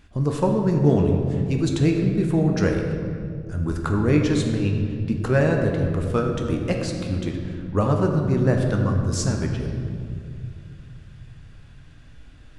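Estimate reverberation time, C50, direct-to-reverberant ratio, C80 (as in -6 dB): 2.3 s, 4.0 dB, 1.5 dB, 5.0 dB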